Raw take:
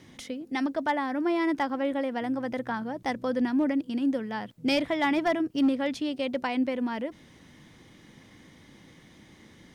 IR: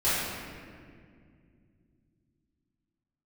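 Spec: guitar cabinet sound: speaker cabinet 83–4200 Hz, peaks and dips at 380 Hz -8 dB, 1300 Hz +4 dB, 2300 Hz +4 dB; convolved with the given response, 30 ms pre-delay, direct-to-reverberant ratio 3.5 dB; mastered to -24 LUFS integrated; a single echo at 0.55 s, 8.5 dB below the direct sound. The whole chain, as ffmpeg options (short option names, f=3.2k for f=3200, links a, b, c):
-filter_complex "[0:a]aecho=1:1:550:0.376,asplit=2[a][b];[1:a]atrim=start_sample=2205,adelay=30[c];[b][c]afir=irnorm=-1:irlink=0,volume=-17dB[d];[a][d]amix=inputs=2:normalize=0,highpass=83,equalizer=f=380:t=q:w=4:g=-8,equalizer=f=1.3k:t=q:w=4:g=4,equalizer=f=2.3k:t=q:w=4:g=4,lowpass=f=4.2k:w=0.5412,lowpass=f=4.2k:w=1.3066,volume=2.5dB"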